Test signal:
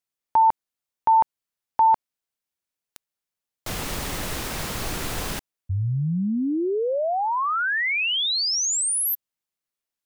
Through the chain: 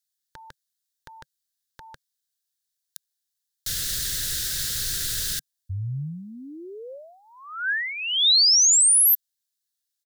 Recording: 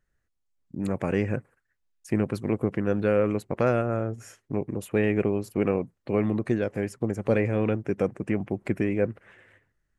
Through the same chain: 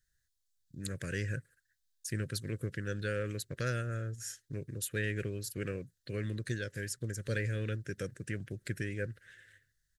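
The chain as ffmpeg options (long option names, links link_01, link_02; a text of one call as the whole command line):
ffmpeg -i in.wav -af "firequalizer=gain_entry='entry(140,0);entry(200,-11);entry(530,-9);entry(810,-29);entry(1600,6);entry(2300,-5);entry(3700,12)':delay=0.05:min_phase=1,volume=-5dB" out.wav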